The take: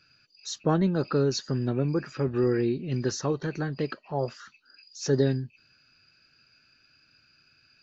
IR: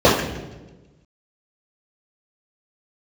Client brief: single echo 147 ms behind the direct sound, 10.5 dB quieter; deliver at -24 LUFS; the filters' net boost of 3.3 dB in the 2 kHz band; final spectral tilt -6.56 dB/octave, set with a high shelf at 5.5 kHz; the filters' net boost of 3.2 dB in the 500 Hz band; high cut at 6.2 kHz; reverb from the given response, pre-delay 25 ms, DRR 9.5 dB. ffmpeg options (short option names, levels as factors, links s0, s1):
-filter_complex "[0:a]lowpass=6200,equalizer=f=500:t=o:g=4,equalizer=f=2000:t=o:g=5,highshelf=f=5500:g=-6.5,aecho=1:1:147:0.299,asplit=2[s0][s1];[1:a]atrim=start_sample=2205,adelay=25[s2];[s1][s2]afir=irnorm=-1:irlink=0,volume=0.0141[s3];[s0][s3]amix=inputs=2:normalize=0,volume=1.12"